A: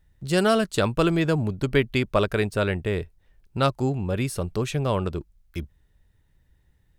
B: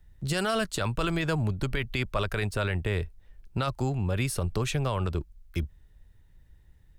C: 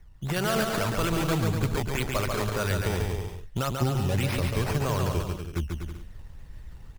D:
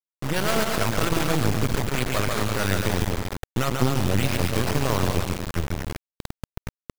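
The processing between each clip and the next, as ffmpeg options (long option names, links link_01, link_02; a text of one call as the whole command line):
ffmpeg -i in.wav -filter_complex "[0:a]lowshelf=frequency=63:gain=8.5,acrossover=split=110|690|4400[link_01][link_02][link_03][link_04];[link_02]acompressor=threshold=-30dB:ratio=6[link_05];[link_01][link_05][link_03][link_04]amix=inputs=4:normalize=0,alimiter=limit=-19dB:level=0:latency=1:release=23,volume=1dB" out.wav
ffmpeg -i in.wav -af "areverse,acompressor=mode=upward:threshold=-31dB:ratio=2.5,areverse,acrusher=samples=11:mix=1:aa=0.000001:lfo=1:lforange=11:lforate=1.8,aecho=1:1:140|245|323.8|382.8|427.1:0.631|0.398|0.251|0.158|0.1" out.wav
ffmpeg -i in.wav -af "acrusher=bits=3:dc=4:mix=0:aa=0.000001,volume=6.5dB" out.wav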